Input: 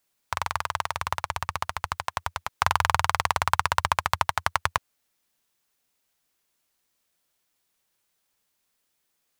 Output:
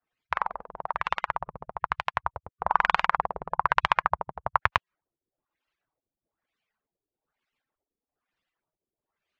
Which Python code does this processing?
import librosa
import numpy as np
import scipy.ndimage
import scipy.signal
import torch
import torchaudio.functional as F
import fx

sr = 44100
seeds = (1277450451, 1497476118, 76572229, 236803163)

y = fx.hpss_only(x, sr, part='percussive')
y = fx.filter_lfo_lowpass(y, sr, shape='sine', hz=1.1, low_hz=390.0, high_hz=2900.0, q=1.5)